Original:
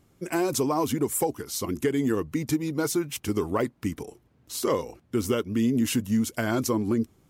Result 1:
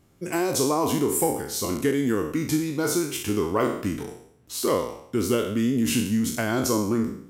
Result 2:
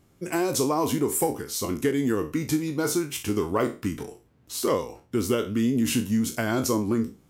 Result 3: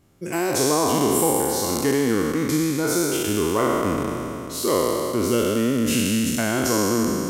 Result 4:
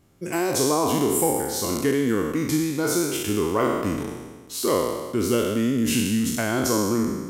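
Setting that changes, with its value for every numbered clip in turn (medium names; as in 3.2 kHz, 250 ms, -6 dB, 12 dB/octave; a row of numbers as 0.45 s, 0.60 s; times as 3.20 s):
spectral sustain, RT60: 0.65 s, 0.31 s, 2.97 s, 1.39 s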